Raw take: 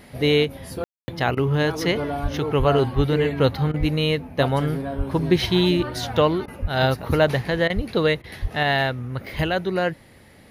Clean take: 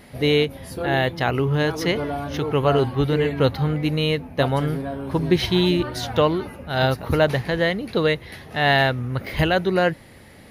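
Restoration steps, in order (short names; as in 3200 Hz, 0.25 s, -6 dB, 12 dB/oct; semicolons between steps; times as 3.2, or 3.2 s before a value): de-plosive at 2.22/2.58/2.95/3.79/4.97/6.61/7.75/8.41; room tone fill 0.84–1.08; interpolate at 1.35/3.72/6.46/7.68/8.22, 18 ms; gain 0 dB, from 8.63 s +3.5 dB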